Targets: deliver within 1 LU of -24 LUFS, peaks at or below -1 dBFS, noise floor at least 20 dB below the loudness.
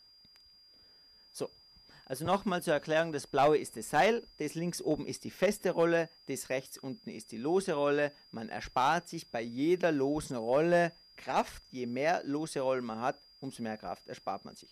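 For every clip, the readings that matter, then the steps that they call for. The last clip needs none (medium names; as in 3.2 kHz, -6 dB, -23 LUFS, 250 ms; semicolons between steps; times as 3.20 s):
clipped samples 0.3%; clipping level -19.5 dBFS; steady tone 4.8 kHz; tone level -58 dBFS; loudness -32.5 LUFS; peak level -19.5 dBFS; loudness target -24.0 LUFS
-> clip repair -19.5 dBFS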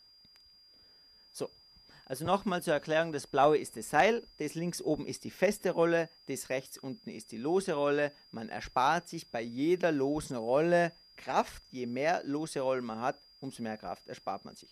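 clipped samples 0.0%; steady tone 4.8 kHz; tone level -58 dBFS
-> band-stop 4.8 kHz, Q 30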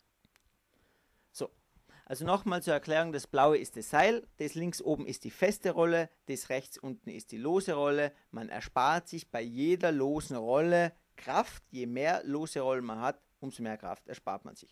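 steady tone not found; loudness -32.0 LUFS; peak level -10.5 dBFS; loudness target -24.0 LUFS
-> trim +8 dB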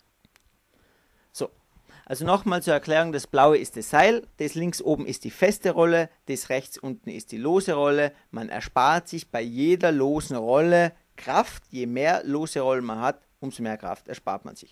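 loudness -24.0 LUFS; peak level -2.5 dBFS; noise floor -67 dBFS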